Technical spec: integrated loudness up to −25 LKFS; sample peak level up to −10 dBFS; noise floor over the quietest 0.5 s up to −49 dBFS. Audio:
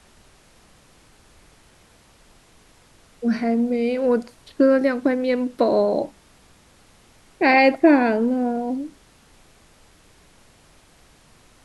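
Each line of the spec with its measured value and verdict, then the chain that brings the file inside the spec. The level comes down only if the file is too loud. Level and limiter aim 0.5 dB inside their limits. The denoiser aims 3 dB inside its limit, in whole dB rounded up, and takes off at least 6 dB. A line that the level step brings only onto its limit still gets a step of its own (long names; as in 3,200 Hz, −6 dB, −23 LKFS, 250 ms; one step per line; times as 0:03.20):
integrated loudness −20.0 LKFS: out of spec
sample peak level −3.5 dBFS: out of spec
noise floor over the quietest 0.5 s −54 dBFS: in spec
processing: level −5.5 dB
brickwall limiter −10.5 dBFS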